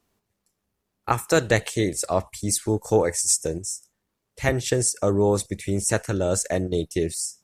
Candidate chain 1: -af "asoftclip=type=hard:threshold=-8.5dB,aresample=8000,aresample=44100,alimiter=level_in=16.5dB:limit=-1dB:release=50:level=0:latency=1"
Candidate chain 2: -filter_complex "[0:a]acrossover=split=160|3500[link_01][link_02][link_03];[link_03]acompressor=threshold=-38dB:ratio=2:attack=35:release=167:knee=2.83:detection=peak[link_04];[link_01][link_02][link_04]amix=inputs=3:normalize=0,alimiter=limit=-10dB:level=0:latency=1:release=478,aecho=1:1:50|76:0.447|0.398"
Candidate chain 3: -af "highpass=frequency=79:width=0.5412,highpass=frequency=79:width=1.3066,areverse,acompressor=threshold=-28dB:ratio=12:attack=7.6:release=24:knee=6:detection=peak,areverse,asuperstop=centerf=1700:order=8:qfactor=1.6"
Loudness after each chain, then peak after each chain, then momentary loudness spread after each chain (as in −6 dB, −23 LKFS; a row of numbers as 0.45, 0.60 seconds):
−14.0, −25.0, −30.5 LKFS; −1.0, −8.5, −15.5 dBFS; 6, 7, 5 LU